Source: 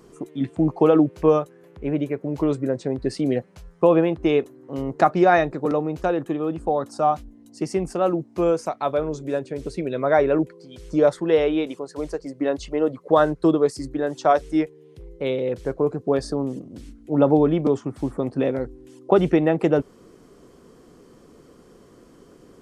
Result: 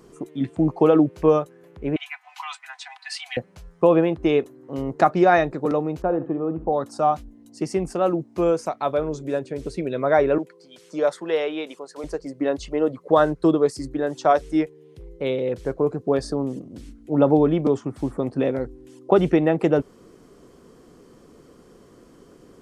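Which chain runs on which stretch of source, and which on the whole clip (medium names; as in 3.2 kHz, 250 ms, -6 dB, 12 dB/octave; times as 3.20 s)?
1.96–3.37 s: steep high-pass 760 Hz 96 dB/octave + peaking EQ 2.8 kHz +10 dB 1.4 oct + comb 4 ms
6.02–6.73 s: low-pass 1.1 kHz + flutter echo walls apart 11.8 m, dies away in 0.3 s + short-mantissa float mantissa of 8-bit
10.38–12.04 s: high-pass 190 Hz 24 dB/octave + peaking EQ 270 Hz -8.5 dB 1.8 oct
whole clip: none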